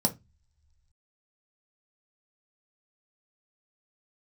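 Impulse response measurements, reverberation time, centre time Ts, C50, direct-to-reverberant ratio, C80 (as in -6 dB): no single decay rate, 7 ms, 17.5 dB, 3.5 dB, 26.5 dB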